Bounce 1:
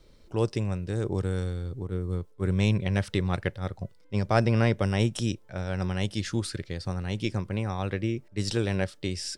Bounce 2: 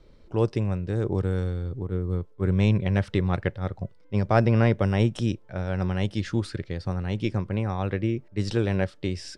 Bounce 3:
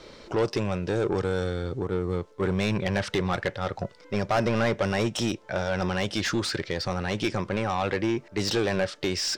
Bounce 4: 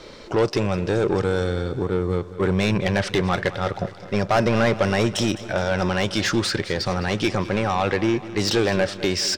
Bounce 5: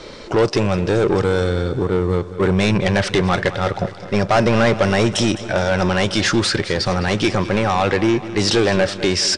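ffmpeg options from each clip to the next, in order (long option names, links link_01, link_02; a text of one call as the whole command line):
ffmpeg -i in.wav -af "aemphasis=mode=reproduction:type=75kf,volume=3dB" out.wav
ffmpeg -i in.wav -filter_complex "[0:a]equalizer=frequency=6500:width_type=o:width=1.3:gain=8.5,acompressor=threshold=-37dB:ratio=1.5,asplit=2[link_01][link_02];[link_02]highpass=frequency=720:poles=1,volume=24dB,asoftclip=type=tanh:threshold=-14.5dB[link_03];[link_01][link_03]amix=inputs=2:normalize=0,lowpass=frequency=3600:poles=1,volume=-6dB" out.wav
ffmpeg -i in.wav -af "aecho=1:1:209|418|627|836|1045|1254:0.158|0.0935|0.0552|0.0326|0.0192|0.0113,volume=5dB" out.wav
ffmpeg -i in.wav -filter_complex "[0:a]asplit=2[link_01][link_02];[link_02]asoftclip=type=hard:threshold=-22dB,volume=-5.5dB[link_03];[link_01][link_03]amix=inputs=2:normalize=0,volume=2dB" -ar 22050 -c:a aac -b:a 96k out.aac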